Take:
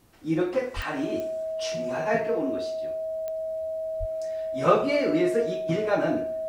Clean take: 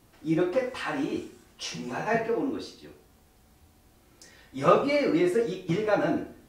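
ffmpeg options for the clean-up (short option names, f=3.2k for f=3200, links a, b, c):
-filter_complex "[0:a]adeclick=t=4,bandreject=f=640:w=30,asplit=3[a][b][c];[a]afade=t=out:st=0.75:d=0.02[d];[b]highpass=f=140:w=0.5412,highpass=f=140:w=1.3066,afade=t=in:st=0.75:d=0.02,afade=t=out:st=0.87:d=0.02[e];[c]afade=t=in:st=0.87:d=0.02[f];[d][e][f]amix=inputs=3:normalize=0,asplit=3[g][h][i];[g]afade=t=out:st=3.99:d=0.02[j];[h]highpass=f=140:w=0.5412,highpass=f=140:w=1.3066,afade=t=in:st=3.99:d=0.02,afade=t=out:st=4.11:d=0.02[k];[i]afade=t=in:st=4.11:d=0.02[l];[j][k][l]amix=inputs=3:normalize=0"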